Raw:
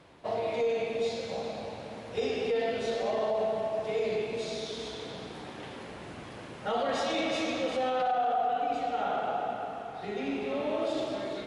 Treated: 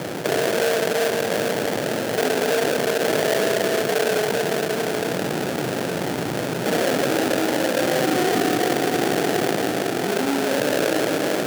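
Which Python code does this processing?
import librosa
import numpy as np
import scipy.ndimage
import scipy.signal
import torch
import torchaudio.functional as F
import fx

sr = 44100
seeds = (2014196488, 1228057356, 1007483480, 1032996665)

y = scipy.signal.sosfilt(scipy.signal.butter(2, 1700.0, 'lowpass', fs=sr, output='sos'), x)
y = fx.sample_hold(y, sr, seeds[0], rate_hz=1100.0, jitter_pct=20)
y = scipy.signal.sosfilt(scipy.signal.butter(4, 130.0, 'highpass', fs=sr, output='sos'), y)
y = fx.peak_eq(y, sr, hz=220.0, db=-5.0, octaves=0.24)
y = fx.env_flatten(y, sr, amount_pct=70)
y = F.gain(torch.from_numpy(y), 6.5).numpy()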